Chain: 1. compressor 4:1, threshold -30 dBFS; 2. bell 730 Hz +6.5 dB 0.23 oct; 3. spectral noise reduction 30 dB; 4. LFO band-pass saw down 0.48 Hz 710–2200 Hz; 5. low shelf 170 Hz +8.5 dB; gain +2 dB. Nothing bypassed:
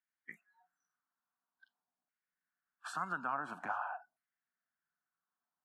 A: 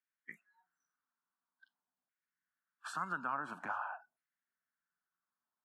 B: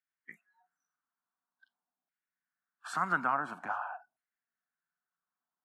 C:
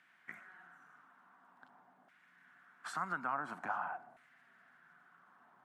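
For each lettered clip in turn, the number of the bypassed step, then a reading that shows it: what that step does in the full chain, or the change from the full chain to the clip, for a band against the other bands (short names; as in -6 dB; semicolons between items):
2, 500 Hz band -2.5 dB; 1, 4 kHz band -2.0 dB; 3, momentary loudness spread change +3 LU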